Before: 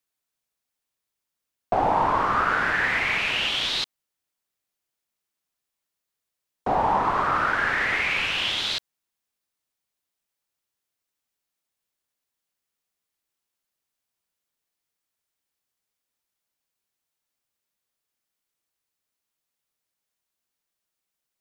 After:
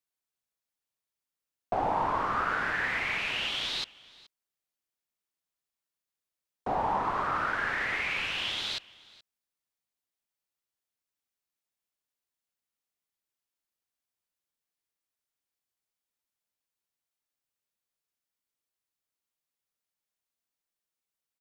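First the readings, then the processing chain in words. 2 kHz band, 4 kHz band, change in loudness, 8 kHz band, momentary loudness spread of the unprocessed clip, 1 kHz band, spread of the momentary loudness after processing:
−7.0 dB, −7.0 dB, −7.0 dB, −7.0 dB, 6 LU, −7.0 dB, 6 LU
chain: single-tap delay 425 ms −22.5 dB
level −7 dB

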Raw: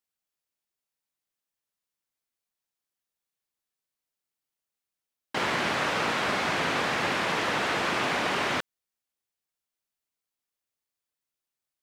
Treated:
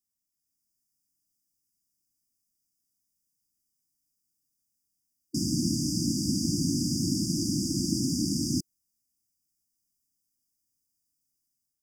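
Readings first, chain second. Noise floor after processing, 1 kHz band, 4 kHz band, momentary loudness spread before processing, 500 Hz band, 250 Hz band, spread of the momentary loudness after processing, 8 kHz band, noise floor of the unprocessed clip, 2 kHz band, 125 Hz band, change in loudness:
−83 dBFS, below −40 dB, −2.0 dB, 4 LU, −11.5 dB, +8.5 dB, 3 LU, +9.5 dB, below −85 dBFS, below −40 dB, +9.5 dB, −1.5 dB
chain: automatic gain control gain up to 6 dB
linear-phase brick-wall band-stop 340–4,700 Hz
level +3.5 dB

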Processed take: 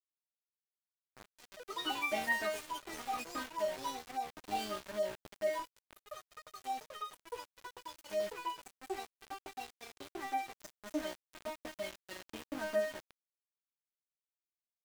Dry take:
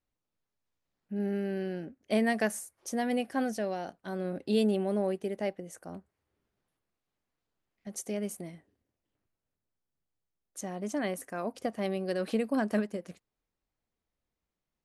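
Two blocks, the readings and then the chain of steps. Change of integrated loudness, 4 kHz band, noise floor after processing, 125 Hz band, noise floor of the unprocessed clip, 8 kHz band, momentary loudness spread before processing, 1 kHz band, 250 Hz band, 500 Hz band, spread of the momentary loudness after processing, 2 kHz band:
−7.0 dB, +1.5 dB, below −85 dBFS, −20.0 dB, below −85 dBFS, −6.0 dB, 15 LU, +1.0 dB, −15.5 dB, −6.5 dB, 16 LU, −0.5 dB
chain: low-pass filter 5,500 Hz 12 dB per octave
tuned comb filter 310 Hz, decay 0.47 s, harmonics all, mix 100%
tape delay 341 ms, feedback 58%, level −18 dB, low-pass 4,000 Hz
centre clipping without the shift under −52 dBFS
delay with pitch and tempo change per echo 214 ms, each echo +4 semitones, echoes 3
level +11.5 dB

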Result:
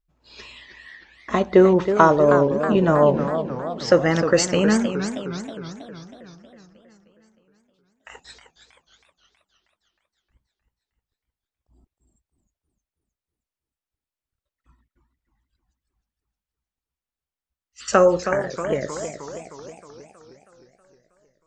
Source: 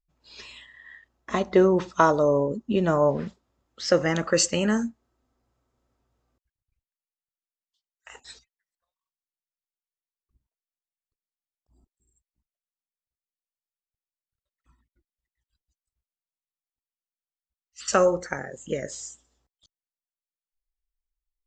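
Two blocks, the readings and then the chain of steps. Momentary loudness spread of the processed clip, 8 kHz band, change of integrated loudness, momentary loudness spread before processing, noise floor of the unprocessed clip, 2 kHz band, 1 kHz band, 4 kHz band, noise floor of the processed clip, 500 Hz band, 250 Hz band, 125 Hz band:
20 LU, −0.5 dB, +4.5 dB, 16 LU, below −85 dBFS, +4.5 dB, +5.5 dB, +1.5 dB, below −85 dBFS, +5.5 dB, +5.5 dB, +6.0 dB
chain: high-shelf EQ 3,800 Hz −8 dB
feedback echo with a swinging delay time 315 ms, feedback 59%, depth 181 cents, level −9 dB
level +5 dB

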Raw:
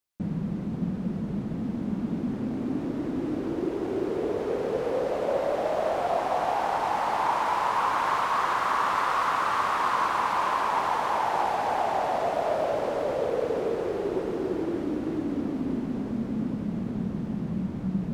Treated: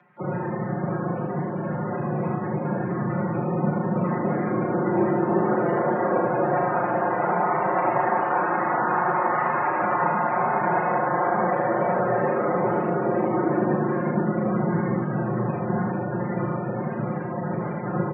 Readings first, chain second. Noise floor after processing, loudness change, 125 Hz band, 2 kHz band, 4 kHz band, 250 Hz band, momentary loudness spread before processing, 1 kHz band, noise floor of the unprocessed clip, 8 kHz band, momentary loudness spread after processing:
−29 dBFS, +3.5 dB, +8.5 dB, +3.5 dB, below −25 dB, +4.5 dB, 6 LU, +2.5 dB, −33 dBFS, below −30 dB, 6 LU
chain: compressing power law on the bin magnitudes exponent 0.3
on a send: repeating echo 111 ms, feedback 35%, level −7.5 dB
on the sum: bad sample-rate conversion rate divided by 3×, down filtered, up hold
spectral peaks only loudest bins 32
low shelf with overshoot 210 Hz −7.5 dB, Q 1.5
single-sideband voice off tune −260 Hz 250–2,200 Hz
ambience of single reflections 36 ms −4.5 dB, 77 ms −3.5 dB
upward compression, threshold −38 dBFS
high-frequency loss of the air 71 metres
frequency shifter +93 Hz
comb filter 5.6 ms, depth 97%
level +3 dB

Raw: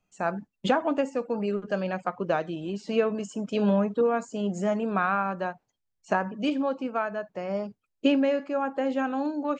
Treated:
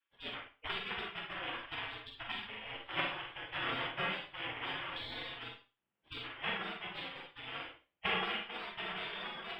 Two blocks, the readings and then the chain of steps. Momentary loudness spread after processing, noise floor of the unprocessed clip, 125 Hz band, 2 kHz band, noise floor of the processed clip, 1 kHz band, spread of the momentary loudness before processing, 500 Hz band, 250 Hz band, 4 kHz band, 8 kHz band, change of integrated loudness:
9 LU, −80 dBFS, −15.5 dB, −3.0 dB, −85 dBFS, −12.0 dB, 8 LU, −21.0 dB, −23.5 dB, +3.0 dB, below −25 dB, −11.5 dB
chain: samples sorted by size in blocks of 16 samples
elliptic low-pass filter 3,000 Hz, stop band 50 dB
gate on every frequency bin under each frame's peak −30 dB weak
four-comb reverb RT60 0.32 s, combs from 33 ms, DRR 2 dB
level +9.5 dB

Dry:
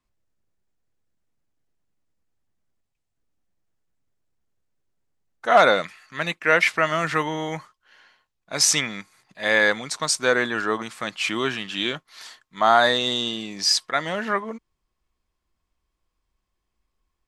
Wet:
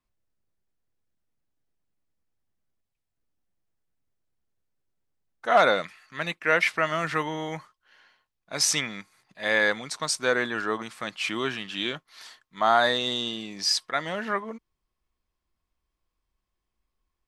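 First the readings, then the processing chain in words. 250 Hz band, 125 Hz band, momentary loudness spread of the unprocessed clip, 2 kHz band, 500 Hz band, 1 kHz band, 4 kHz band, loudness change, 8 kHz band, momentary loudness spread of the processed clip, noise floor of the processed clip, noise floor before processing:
−4.0 dB, −4.0 dB, 15 LU, −4.0 dB, −4.0 dB, −4.0 dB, −4.0 dB, −4.0 dB, −5.5 dB, 15 LU, −83 dBFS, −79 dBFS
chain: parametric band 7,100 Hz −3 dB 0.34 octaves
level −4 dB

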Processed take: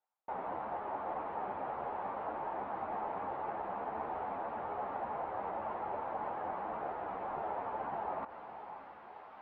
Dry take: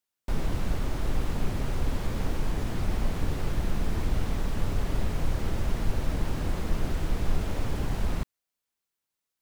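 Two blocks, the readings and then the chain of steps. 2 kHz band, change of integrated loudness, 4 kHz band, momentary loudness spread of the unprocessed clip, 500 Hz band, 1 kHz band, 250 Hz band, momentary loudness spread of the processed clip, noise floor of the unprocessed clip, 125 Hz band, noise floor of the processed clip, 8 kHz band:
−7.5 dB, −7.5 dB, below −20 dB, 1 LU, −2.0 dB, +6.0 dB, −15.0 dB, 6 LU, below −85 dBFS, −27.0 dB, −53 dBFS, below −35 dB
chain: spectral tilt −2.5 dB per octave
reversed playback
upward compression, threshold −17 dBFS
reversed playback
four-pole ladder band-pass 920 Hz, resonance 55%
high-frequency loss of the air 310 metres
on a send: feedback delay with all-pass diffusion 600 ms, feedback 49%, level −11 dB
on the sum: string-ensemble chorus
level +15 dB

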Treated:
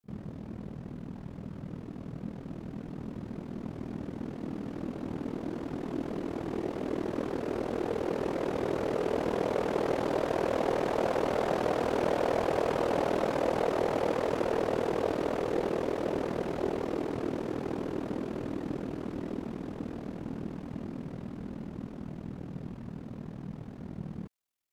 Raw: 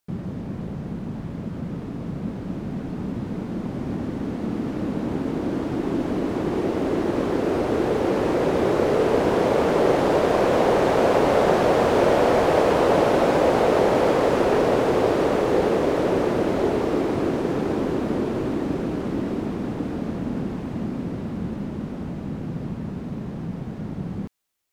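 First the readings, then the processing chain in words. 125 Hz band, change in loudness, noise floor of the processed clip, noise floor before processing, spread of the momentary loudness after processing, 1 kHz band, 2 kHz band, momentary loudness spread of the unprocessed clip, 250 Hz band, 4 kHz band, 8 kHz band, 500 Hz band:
−10.5 dB, −10.5 dB, −44 dBFS, −33 dBFS, 13 LU, −10.5 dB, −10.5 dB, 13 LU, −10.5 dB, −10.5 dB, −10.5 dB, −10.5 dB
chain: echo ahead of the sound 45 ms −20.5 dB
ring modulation 20 Hz
level −7.5 dB

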